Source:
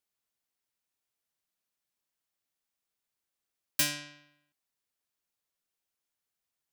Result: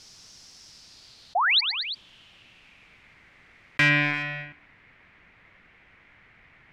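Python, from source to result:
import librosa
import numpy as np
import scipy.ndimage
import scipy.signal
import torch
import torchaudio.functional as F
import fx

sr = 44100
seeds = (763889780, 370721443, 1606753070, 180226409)

y = fx.bass_treble(x, sr, bass_db=10, treble_db=fx.steps((0.0, 3.0), (3.88, -7.0)))
y = fx.leveller(y, sr, passes=3)
y = fx.spec_paint(y, sr, seeds[0], shape='rise', start_s=1.35, length_s=0.26, low_hz=650.0, high_hz=4900.0, level_db=-29.0)
y = fx.filter_sweep_lowpass(y, sr, from_hz=5400.0, to_hz=2100.0, start_s=0.63, end_s=3.2, q=4.4)
y = fx.echo_feedback(y, sr, ms=113, feedback_pct=38, wet_db=-23.0)
y = fx.env_flatten(y, sr, amount_pct=70)
y = y * 10.0 ** (-1.5 / 20.0)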